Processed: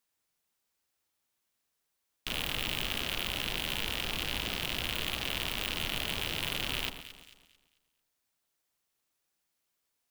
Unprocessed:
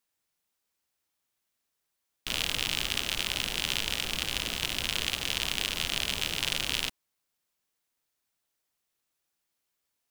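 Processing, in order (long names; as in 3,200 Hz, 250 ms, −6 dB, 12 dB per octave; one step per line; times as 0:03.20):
wave folding −16.5 dBFS
delay that swaps between a low-pass and a high-pass 111 ms, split 1,300 Hz, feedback 58%, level −8 dB
dynamic equaliser 7,300 Hz, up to −7 dB, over −52 dBFS, Q 1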